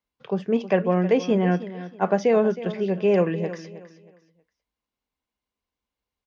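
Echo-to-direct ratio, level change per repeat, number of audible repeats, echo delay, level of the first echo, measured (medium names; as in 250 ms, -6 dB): -14.0 dB, -11.0 dB, 2, 317 ms, -14.5 dB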